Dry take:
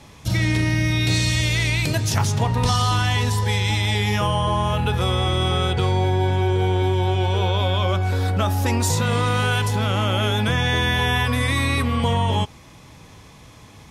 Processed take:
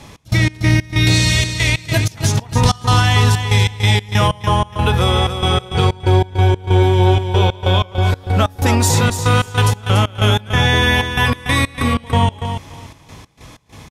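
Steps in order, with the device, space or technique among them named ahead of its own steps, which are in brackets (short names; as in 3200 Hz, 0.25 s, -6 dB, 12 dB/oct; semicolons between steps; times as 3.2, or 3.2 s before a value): trance gate with a delay (step gate "x.x.x.xxx.x." 94 bpm -24 dB; feedback echo 0.287 s, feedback 19%, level -8.5 dB); gain +6.5 dB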